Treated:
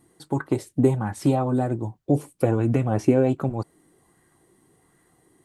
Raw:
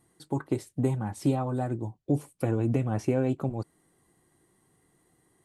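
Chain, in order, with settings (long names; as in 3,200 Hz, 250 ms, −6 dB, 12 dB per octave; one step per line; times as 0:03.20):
auto-filter bell 1.3 Hz 280–1,700 Hz +7 dB
level +4.5 dB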